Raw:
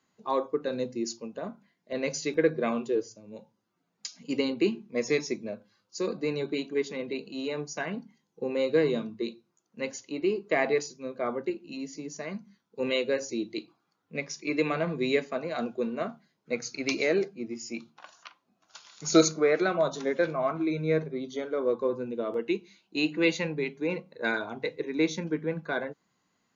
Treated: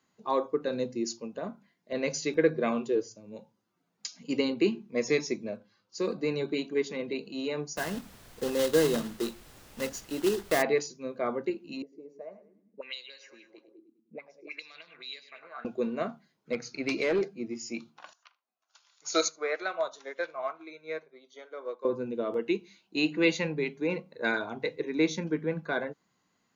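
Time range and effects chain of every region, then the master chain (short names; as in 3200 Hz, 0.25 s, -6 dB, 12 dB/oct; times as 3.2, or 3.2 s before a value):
5.54–6.16 block floating point 7-bit + LPF 6100 Hz
7.76–10.61 block floating point 3-bit + notch 2300 Hz, Q 5.1 + added noise pink -53 dBFS
11.82–15.65 feedback echo 0.102 s, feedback 57%, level -13 dB + auto-wah 200–4700 Hz, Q 4.4, up, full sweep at -23.5 dBFS
16.52–17.23 overloaded stage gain 21.5 dB + air absorption 110 m
18.13–21.85 HPF 640 Hz + echo 77 ms -20.5 dB + upward expander, over -48 dBFS
whole clip: dry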